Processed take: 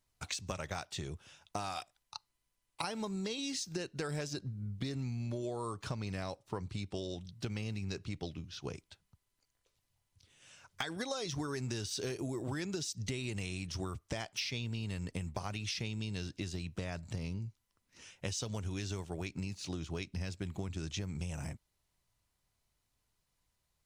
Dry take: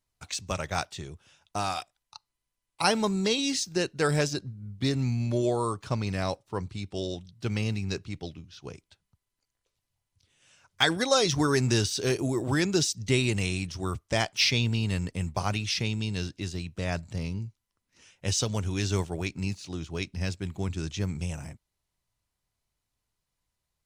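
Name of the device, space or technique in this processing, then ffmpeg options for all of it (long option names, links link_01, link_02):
serial compression, peaks first: -af "acompressor=threshold=-32dB:ratio=6,acompressor=threshold=-39dB:ratio=2.5,volume=2dB"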